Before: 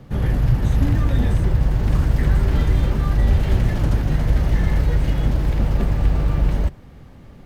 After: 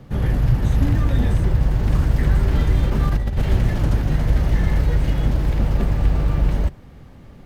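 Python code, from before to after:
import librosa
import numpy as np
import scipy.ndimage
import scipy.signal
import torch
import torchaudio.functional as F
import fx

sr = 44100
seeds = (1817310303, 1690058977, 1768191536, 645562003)

y = fx.over_compress(x, sr, threshold_db=-17.0, ratio=-0.5, at=(2.9, 3.44))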